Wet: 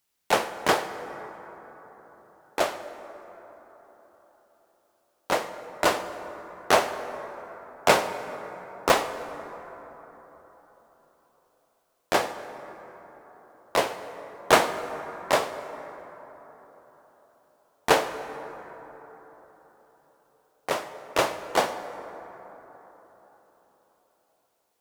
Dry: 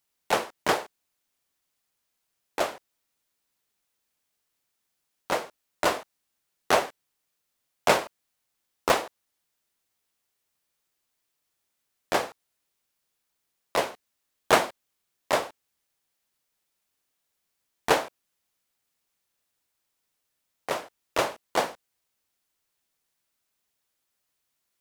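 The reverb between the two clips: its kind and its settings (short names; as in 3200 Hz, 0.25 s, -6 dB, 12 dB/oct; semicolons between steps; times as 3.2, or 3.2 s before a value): plate-style reverb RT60 4.4 s, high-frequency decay 0.35×, DRR 9.5 dB; gain +2 dB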